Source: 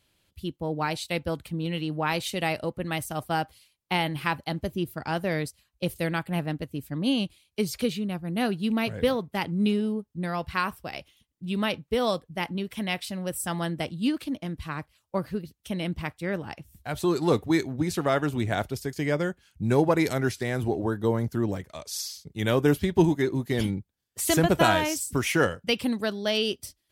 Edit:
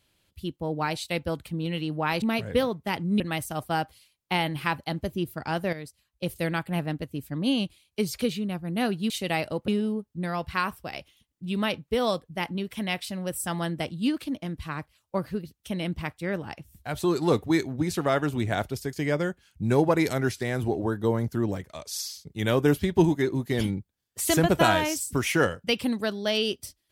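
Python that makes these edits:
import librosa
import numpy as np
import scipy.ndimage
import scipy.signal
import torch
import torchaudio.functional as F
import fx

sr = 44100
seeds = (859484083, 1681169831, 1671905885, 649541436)

y = fx.edit(x, sr, fx.swap(start_s=2.22, length_s=0.58, other_s=8.7, other_length_s=0.98),
    fx.fade_in_from(start_s=5.33, length_s=0.7, floor_db=-12.0), tone=tone)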